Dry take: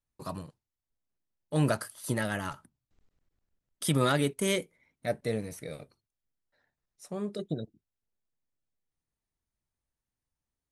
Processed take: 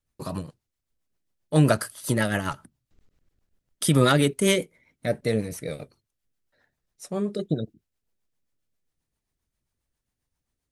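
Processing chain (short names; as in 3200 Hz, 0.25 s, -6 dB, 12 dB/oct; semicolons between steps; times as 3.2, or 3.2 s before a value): rotary speaker horn 7.5 Hz; gain +9 dB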